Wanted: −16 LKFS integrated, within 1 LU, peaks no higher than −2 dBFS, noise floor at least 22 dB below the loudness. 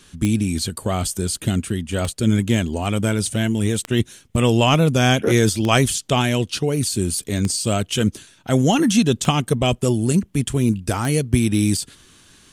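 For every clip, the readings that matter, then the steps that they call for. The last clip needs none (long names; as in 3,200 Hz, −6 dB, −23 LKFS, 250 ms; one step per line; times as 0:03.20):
number of clicks 7; integrated loudness −20.0 LKFS; sample peak −1.5 dBFS; target loudness −16.0 LKFS
→ click removal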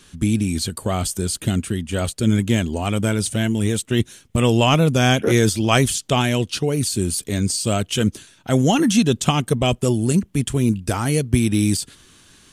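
number of clicks 0; integrated loudness −20.0 LKFS; sample peak −1.5 dBFS; target loudness −16.0 LKFS
→ level +4 dB
brickwall limiter −2 dBFS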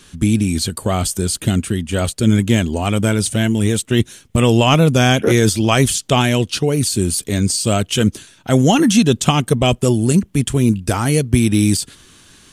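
integrated loudness −16.0 LKFS; sample peak −2.0 dBFS; background noise floor −49 dBFS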